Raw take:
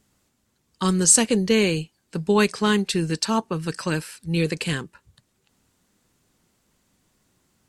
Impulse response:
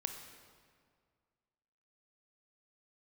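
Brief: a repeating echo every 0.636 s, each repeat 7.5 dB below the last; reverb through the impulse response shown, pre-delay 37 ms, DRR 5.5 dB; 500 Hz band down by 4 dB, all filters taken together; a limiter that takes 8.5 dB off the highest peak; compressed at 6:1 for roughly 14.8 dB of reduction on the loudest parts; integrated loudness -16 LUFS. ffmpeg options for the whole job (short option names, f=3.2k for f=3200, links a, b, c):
-filter_complex "[0:a]equalizer=f=500:t=o:g=-5,acompressor=threshold=-27dB:ratio=6,alimiter=limit=-23dB:level=0:latency=1,aecho=1:1:636|1272|1908|2544|3180:0.422|0.177|0.0744|0.0312|0.0131,asplit=2[a][b];[1:a]atrim=start_sample=2205,adelay=37[c];[b][c]afir=irnorm=-1:irlink=0,volume=-5.5dB[d];[a][d]amix=inputs=2:normalize=0,volume=16.5dB"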